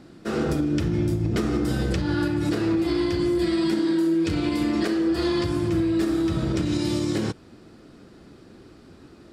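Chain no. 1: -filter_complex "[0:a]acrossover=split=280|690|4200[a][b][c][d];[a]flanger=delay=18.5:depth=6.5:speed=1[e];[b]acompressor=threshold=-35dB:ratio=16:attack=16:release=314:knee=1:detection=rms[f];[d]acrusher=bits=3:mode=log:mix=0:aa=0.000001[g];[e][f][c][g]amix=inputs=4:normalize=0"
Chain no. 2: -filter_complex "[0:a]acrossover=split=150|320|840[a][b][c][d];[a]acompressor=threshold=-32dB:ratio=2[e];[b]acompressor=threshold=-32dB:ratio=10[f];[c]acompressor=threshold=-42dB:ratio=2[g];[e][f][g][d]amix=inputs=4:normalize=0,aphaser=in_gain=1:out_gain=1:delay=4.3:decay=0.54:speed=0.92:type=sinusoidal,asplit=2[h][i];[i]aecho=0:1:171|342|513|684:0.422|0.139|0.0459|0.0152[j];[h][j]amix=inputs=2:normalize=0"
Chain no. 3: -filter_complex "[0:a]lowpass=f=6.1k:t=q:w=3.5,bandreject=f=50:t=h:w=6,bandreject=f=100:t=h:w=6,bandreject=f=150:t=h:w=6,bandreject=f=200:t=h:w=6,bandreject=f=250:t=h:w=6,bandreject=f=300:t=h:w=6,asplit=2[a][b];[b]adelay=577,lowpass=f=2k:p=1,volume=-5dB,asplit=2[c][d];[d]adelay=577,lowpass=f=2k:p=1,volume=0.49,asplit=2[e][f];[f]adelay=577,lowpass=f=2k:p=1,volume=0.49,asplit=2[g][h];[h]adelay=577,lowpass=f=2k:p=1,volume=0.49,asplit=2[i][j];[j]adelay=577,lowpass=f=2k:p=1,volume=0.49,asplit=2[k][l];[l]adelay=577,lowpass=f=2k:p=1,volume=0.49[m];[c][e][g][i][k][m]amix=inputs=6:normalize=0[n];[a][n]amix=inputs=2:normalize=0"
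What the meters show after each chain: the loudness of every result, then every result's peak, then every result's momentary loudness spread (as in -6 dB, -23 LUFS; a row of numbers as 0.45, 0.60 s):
-29.0, -26.0, -22.5 LUFS; -16.0, -10.5, -10.5 dBFS; 2, 16, 15 LU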